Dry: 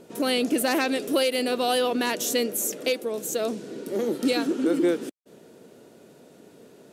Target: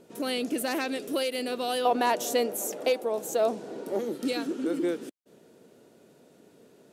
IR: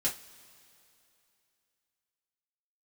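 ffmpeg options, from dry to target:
-filter_complex "[0:a]asettb=1/sr,asplit=3[s0][s1][s2];[s0]atrim=end=1.854[s3];[s1]atrim=start=1.85:end=3.99,asetpts=PTS-STARTPTS,afade=t=in:d=0.004:c=qsin,afade=t=out:st=2.136:d=0.004:c=qsin,equalizer=f=790:w=1.2:g=14.5[s4];[s2]atrim=start=3.986[s5];[s3][s4]acrossfade=d=0.004:c1=hsin:c2=qsin[s6];[s6][s5]acrossfade=d=0.004:c1=qsin:c2=hsin,volume=0.501"

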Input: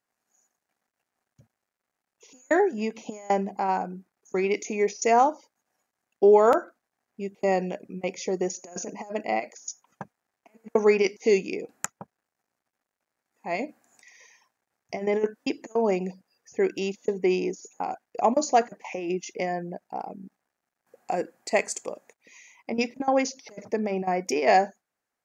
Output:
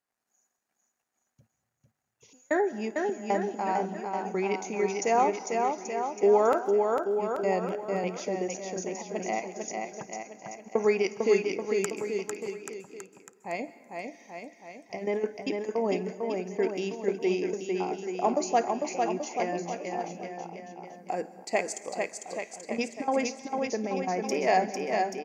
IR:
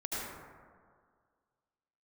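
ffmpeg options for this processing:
-filter_complex "[0:a]aecho=1:1:450|832.5|1158|1434|1669:0.631|0.398|0.251|0.158|0.1,asplit=2[s0][s1];[1:a]atrim=start_sample=2205,highshelf=f=3400:g=11,adelay=54[s2];[s1][s2]afir=irnorm=-1:irlink=0,volume=0.0668[s3];[s0][s3]amix=inputs=2:normalize=0,volume=0.596"

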